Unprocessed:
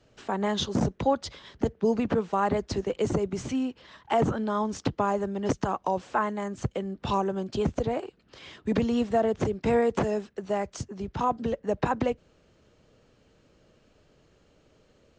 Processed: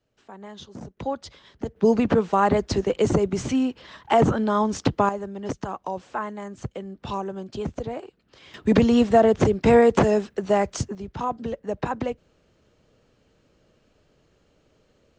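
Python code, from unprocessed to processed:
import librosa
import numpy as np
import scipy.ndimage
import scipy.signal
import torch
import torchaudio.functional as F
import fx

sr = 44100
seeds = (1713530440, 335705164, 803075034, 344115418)

y = fx.gain(x, sr, db=fx.steps((0.0, -13.5), (0.97, -4.0), (1.76, 6.0), (5.09, -3.0), (8.54, 8.0), (10.95, -1.0)))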